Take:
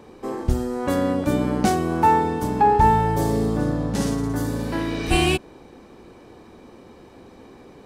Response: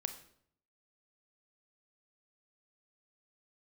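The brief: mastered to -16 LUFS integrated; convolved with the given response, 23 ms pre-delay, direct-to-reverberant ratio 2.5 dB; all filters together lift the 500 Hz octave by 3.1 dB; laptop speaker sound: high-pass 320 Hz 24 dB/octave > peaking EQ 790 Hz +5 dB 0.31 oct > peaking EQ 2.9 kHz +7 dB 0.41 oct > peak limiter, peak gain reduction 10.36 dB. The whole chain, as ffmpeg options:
-filter_complex "[0:a]equalizer=f=500:t=o:g=4,asplit=2[s0][s1];[1:a]atrim=start_sample=2205,adelay=23[s2];[s1][s2]afir=irnorm=-1:irlink=0,volume=0.794[s3];[s0][s3]amix=inputs=2:normalize=0,highpass=f=320:w=0.5412,highpass=f=320:w=1.3066,equalizer=f=790:t=o:w=0.31:g=5,equalizer=f=2900:t=o:w=0.41:g=7,volume=1.88,alimiter=limit=0.531:level=0:latency=1"

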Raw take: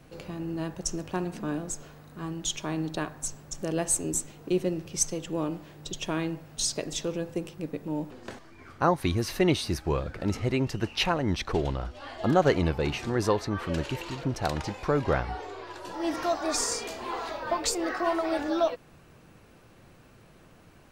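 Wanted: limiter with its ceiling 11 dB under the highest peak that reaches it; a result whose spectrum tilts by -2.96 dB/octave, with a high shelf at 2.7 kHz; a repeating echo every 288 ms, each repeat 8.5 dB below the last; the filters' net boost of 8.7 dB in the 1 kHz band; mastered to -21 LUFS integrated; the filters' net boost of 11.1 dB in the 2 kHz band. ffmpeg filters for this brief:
-af "equalizer=f=1000:t=o:g=8,equalizer=f=2000:t=o:g=8,highshelf=f=2700:g=8.5,alimiter=limit=0.224:level=0:latency=1,aecho=1:1:288|576|864|1152:0.376|0.143|0.0543|0.0206,volume=1.78"

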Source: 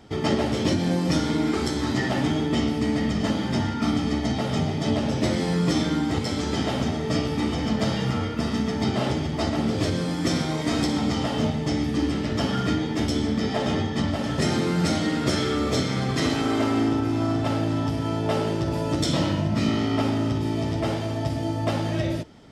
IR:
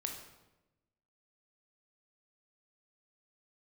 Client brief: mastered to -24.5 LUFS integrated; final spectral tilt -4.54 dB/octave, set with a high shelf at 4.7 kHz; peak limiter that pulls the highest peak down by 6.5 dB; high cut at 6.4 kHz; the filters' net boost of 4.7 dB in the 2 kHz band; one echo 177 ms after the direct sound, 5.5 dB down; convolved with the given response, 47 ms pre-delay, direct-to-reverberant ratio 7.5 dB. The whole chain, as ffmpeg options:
-filter_complex "[0:a]lowpass=6400,equalizer=f=2000:t=o:g=4,highshelf=f=4700:g=9,alimiter=limit=0.168:level=0:latency=1,aecho=1:1:177:0.531,asplit=2[s0][s1];[1:a]atrim=start_sample=2205,adelay=47[s2];[s1][s2]afir=irnorm=-1:irlink=0,volume=0.422[s3];[s0][s3]amix=inputs=2:normalize=0,volume=0.891"

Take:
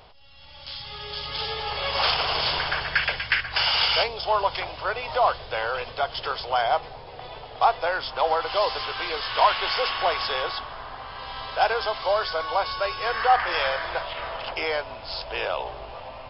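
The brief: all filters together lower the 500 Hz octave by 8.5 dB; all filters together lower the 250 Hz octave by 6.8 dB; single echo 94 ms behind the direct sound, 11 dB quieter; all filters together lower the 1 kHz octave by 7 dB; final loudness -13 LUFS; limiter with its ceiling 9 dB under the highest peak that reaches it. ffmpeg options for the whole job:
-af "equalizer=f=250:t=o:g=-7,equalizer=f=500:t=o:g=-7.5,equalizer=f=1000:t=o:g=-6,alimiter=limit=0.1:level=0:latency=1,aecho=1:1:94:0.282,volume=7.5"

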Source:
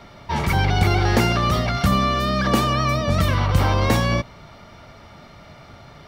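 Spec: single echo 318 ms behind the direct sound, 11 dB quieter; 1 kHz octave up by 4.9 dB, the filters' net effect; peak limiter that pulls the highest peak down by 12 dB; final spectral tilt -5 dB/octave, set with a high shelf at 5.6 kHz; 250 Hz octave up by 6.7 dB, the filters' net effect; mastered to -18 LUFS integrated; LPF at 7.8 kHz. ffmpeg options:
-af "lowpass=7800,equalizer=f=250:t=o:g=8.5,equalizer=f=1000:t=o:g=5.5,highshelf=f=5600:g=6.5,alimiter=limit=0.237:level=0:latency=1,aecho=1:1:318:0.282,volume=1.41"

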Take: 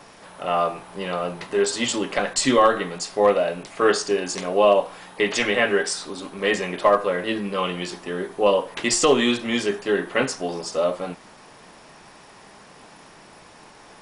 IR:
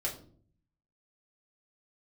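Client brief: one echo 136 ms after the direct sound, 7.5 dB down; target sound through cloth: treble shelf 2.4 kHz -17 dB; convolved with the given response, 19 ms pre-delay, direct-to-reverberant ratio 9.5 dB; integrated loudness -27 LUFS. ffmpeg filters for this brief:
-filter_complex "[0:a]aecho=1:1:136:0.422,asplit=2[s0][s1];[1:a]atrim=start_sample=2205,adelay=19[s2];[s1][s2]afir=irnorm=-1:irlink=0,volume=0.224[s3];[s0][s3]amix=inputs=2:normalize=0,highshelf=f=2400:g=-17,volume=0.631"

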